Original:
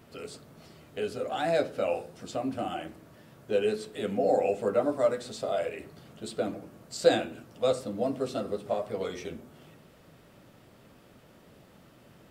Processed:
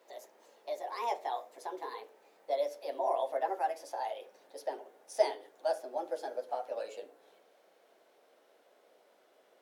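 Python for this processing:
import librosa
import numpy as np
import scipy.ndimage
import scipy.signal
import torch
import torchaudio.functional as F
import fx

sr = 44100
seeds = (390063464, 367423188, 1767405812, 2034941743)

y = fx.speed_glide(x, sr, from_pct=145, to_pct=111)
y = fx.ladder_highpass(y, sr, hz=410.0, resonance_pct=45)
y = y * 10.0 ** (-1.0 / 20.0)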